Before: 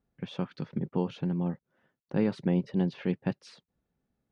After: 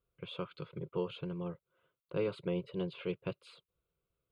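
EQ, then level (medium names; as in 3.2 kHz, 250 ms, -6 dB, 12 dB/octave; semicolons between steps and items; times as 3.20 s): bass shelf 410 Hz -4.5 dB; band-stop 610 Hz, Q 12; static phaser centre 1.2 kHz, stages 8; +1.0 dB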